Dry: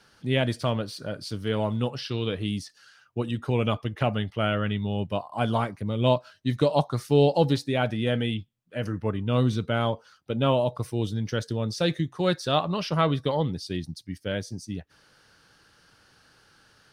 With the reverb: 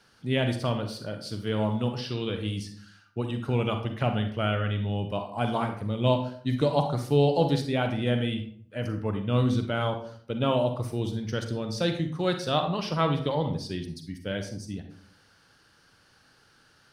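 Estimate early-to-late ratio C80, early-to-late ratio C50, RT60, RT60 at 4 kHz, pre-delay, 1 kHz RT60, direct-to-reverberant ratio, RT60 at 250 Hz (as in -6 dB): 12.0 dB, 8.0 dB, 0.55 s, 0.35 s, 38 ms, 0.50 s, 6.0 dB, 0.70 s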